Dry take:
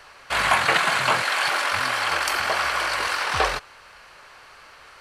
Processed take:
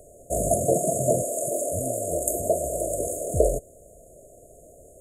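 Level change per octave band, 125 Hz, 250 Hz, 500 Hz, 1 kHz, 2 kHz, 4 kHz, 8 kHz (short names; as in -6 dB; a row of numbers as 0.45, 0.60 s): +8.0 dB, +8.0 dB, +7.5 dB, -11.0 dB, under -40 dB, under -40 dB, +6.5 dB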